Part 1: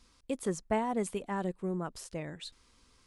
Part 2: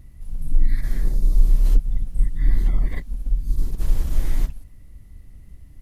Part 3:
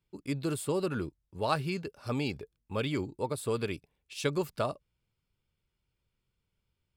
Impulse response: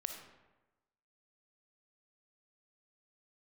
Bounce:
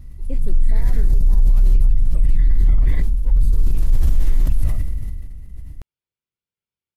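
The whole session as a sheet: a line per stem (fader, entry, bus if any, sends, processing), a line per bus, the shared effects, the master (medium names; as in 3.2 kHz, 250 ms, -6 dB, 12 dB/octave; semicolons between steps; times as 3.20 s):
+1.0 dB, 0.00 s, no send, tilt shelf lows +7.5 dB, about 780 Hz; auto duck -10 dB, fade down 0.50 s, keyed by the second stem
-1.5 dB, 0.00 s, no send, bass shelf 120 Hz +9 dB; decay stretcher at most 26 dB/s
-9.0 dB, 0.05 s, no send, saturation -30.5 dBFS, distortion -10 dB; high-pass 320 Hz 6 dB/octave; vibrato with a chosen wave saw up 4 Hz, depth 100 cents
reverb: none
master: peak limiter -7 dBFS, peak gain reduction 10 dB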